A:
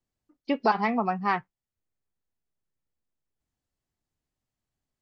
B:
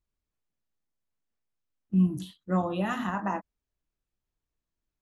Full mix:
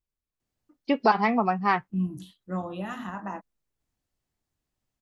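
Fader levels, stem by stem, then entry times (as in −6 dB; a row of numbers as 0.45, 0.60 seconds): +2.5, −5.0 decibels; 0.40, 0.00 seconds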